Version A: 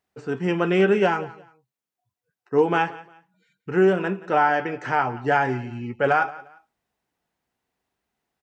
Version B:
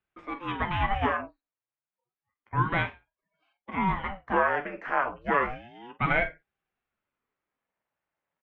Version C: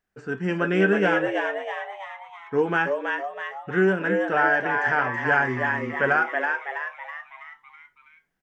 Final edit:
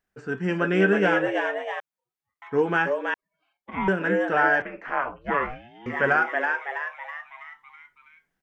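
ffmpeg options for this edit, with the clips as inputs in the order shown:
-filter_complex "[1:a]asplit=3[s0][s1][s2];[2:a]asplit=4[s3][s4][s5][s6];[s3]atrim=end=1.802[s7];[s0]atrim=start=1.798:end=2.422[s8];[s4]atrim=start=2.418:end=3.142[s9];[s1]atrim=start=3.138:end=3.882[s10];[s5]atrim=start=3.878:end=4.622[s11];[s2]atrim=start=4.618:end=5.862[s12];[s6]atrim=start=5.858[s13];[s7][s8]acrossfade=d=0.004:c1=hsin:c2=hsin[s14];[s14][s9]acrossfade=d=0.004:c1=hsin:c2=hsin[s15];[s15][s10]acrossfade=d=0.004:c1=hsin:c2=hsin[s16];[s16][s11]acrossfade=d=0.004:c1=hsin:c2=hsin[s17];[s17][s12]acrossfade=d=0.004:c1=hsin:c2=hsin[s18];[s18][s13]acrossfade=d=0.004:c1=hsin:c2=hsin"

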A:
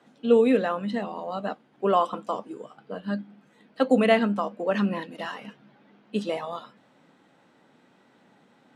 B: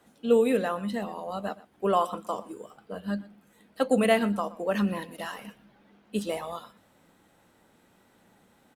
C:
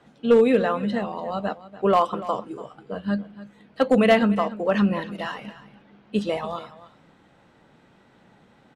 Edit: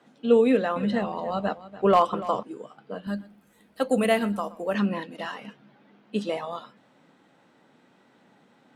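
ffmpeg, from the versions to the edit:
-filter_complex "[0:a]asplit=3[s0][s1][s2];[s0]atrim=end=0.762[s3];[2:a]atrim=start=0.758:end=2.432[s4];[s1]atrim=start=2.428:end=3.072[s5];[1:a]atrim=start=3.068:end=4.742[s6];[s2]atrim=start=4.738[s7];[s3][s4]acrossfade=d=0.004:c1=hsin:c2=hsin[s8];[s8][s5]acrossfade=d=0.004:c1=hsin:c2=hsin[s9];[s9][s6]acrossfade=d=0.004:c1=hsin:c2=hsin[s10];[s10][s7]acrossfade=d=0.004:c1=hsin:c2=hsin"

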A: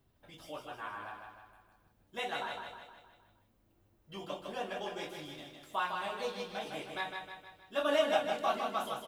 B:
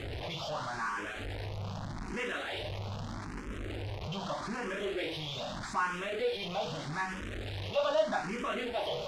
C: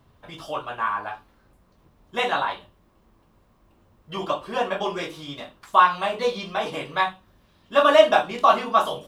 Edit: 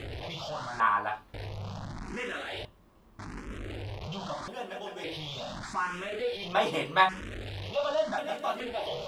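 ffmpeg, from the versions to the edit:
-filter_complex "[2:a]asplit=3[s0][s1][s2];[0:a]asplit=2[s3][s4];[1:a]asplit=6[s5][s6][s7][s8][s9][s10];[s5]atrim=end=0.802[s11];[s0]atrim=start=0.798:end=1.342[s12];[s6]atrim=start=1.338:end=2.652[s13];[s1]atrim=start=2.648:end=3.192[s14];[s7]atrim=start=3.188:end=4.482[s15];[s3]atrim=start=4.478:end=5.042[s16];[s8]atrim=start=5.038:end=6.532[s17];[s2]atrim=start=6.528:end=7.092[s18];[s9]atrim=start=7.088:end=8.182[s19];[s4]atrim=start=8.178:end=8.602[s20];[s10]atrim=start=8.598[s21];[s11][s12]acrossfade=d=0.004:c1=hsin:c2=hsin[s22];[s22][s13]acrossfade=d=0.004:c1=hsin:c2=hsin[s23];[s23][s14]acrossfade=d=0.004:c1=hsin:c2=hsin[s24];[s24][s15]acrossfade=d=0.004:c1=hsin:c2=hsin[s25];[s25][s16]acrossfade=d=0.004:c1=hsin:c2=hsin[s26];[s26][s17]acrossfade=d=0.004:c1=hsin:c2=hsin[s27];[s27][s18]acrossfade=d=0.004:c1=hsin:c2=hsin[s28];[s28][s19]acrossfade=d=0.004:c1=hsin:c2=hsin[s29];[s29][s20]acrossfade=d=0.004:c1=hsin:c2=hsin[s30];[s30][s21]acrossfade=d=0.004:c1=hsin:c2=hsin"

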